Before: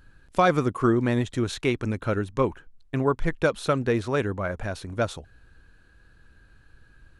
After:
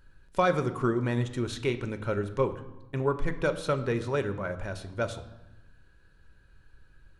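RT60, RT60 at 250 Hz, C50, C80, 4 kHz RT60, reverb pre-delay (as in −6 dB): 1.0 s, 1.4 s, 13.0 dB, 15.0 dB, 0.80 s, 5 ms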